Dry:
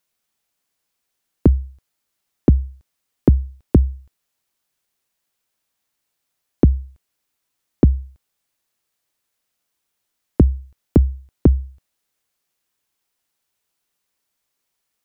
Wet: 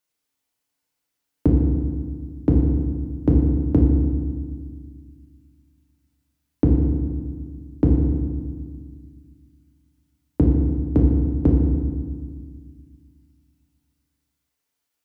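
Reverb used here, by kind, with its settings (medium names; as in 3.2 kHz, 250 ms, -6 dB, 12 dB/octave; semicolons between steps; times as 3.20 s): FDN reverb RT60 1.7 s, low-frequency decay 1.5×, high-frequency decay 0.75×, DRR -2 dB; trim -7 dB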